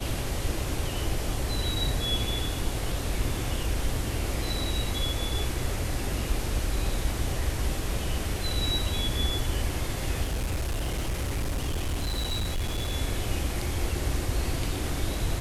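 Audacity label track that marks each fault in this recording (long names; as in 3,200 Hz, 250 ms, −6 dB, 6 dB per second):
10.230000	12.930000	clipping −25 dBFS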